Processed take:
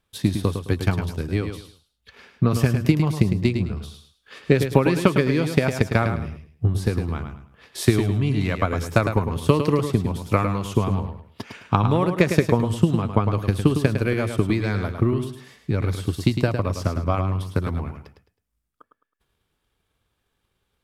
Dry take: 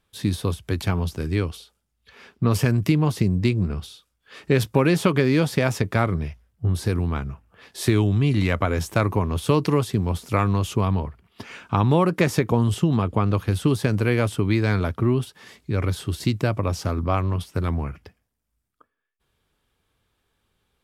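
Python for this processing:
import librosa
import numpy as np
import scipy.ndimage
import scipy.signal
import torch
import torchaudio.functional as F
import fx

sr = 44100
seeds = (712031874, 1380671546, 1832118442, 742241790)

p1 = fx.transient(x, sr, attack_db=8, sustain_db=0)
p2 = p1 + fx.echo_feedback(p1, sr, ms=106, feedback_pct=28, wet_db=-7.5, dry=0)
y = p2 * 10.0 ** (-3.5 / 20.0)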